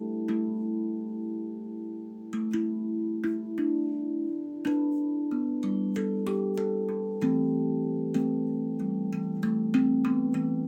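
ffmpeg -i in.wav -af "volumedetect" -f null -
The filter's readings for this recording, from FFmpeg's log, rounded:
mean_volume: -28.5 dB
max_volume: -13.0 dB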